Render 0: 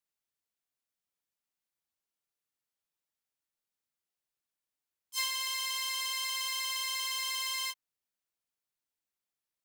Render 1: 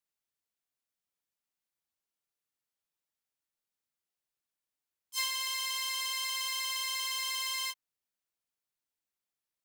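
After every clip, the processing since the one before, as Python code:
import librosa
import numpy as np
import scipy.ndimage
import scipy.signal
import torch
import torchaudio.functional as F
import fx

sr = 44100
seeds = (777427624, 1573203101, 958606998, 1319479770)

y = x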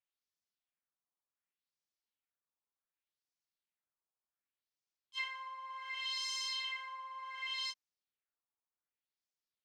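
y = fx.filter_lfo_lowpass(x, sr, shape='sine', hz=0.67, low_hz=960.0, high_hz=5900.0, q=2.3)
y = y * 10.0 ** (-7.5 / 20.0)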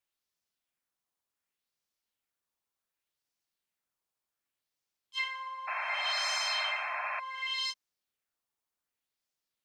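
y = fx.spec_paint(x, sr, seeds[0], shape='noise', start_s=5.67, length_s=1.53, low_hz=580.0, high_hz=2700.0, level_db=-42.0)
y = y * 10.0 ** (5.5 / 20.0)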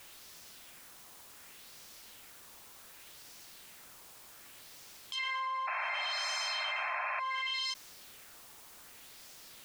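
y = fx.env_flatten(x, sr, amount_pct=100)
y = y * 10.0 ** (-5.0 / 20.0)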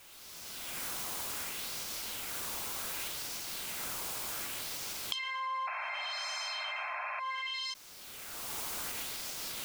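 y = fx.recorder_agc(x, sr, target_db=-27.5, rise_db_per_s=22.0, max_gain_db=30)
y = fx.notch(y, sr, hz=1800.0, q=17.0)
y = y * 10.0 ** (-2.5 / 20.0)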